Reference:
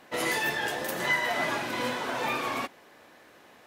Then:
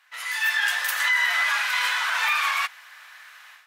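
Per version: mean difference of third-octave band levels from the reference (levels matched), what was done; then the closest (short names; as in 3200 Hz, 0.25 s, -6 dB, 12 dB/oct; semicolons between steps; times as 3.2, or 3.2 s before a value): 13.0 dB: HPF 1300 Hz 24 dB/oct; high shelf 2400 Hz -6 dB; AGC gain up to 15 dB; limiter -13.5 dBFS, peak gain reduction 8.5 dB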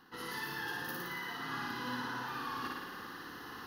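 8.0 dB: bell 3600 Hz -9 dB 0.2 oct; reverse; compressor 6:1, threshold -47 dBFS, peak gain reduction 22.5 dB; reverse; fixed phaser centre 2300 Hz, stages 6; flutter echo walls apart 9.7 m, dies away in 1.3 s; gain +9 dB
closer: second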